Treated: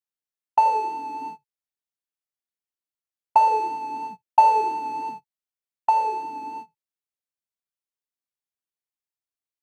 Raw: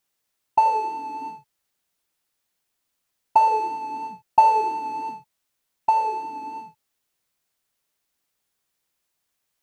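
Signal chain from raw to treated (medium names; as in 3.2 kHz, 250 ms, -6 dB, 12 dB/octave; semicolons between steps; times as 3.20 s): gate -36 dBFS, range -20 dB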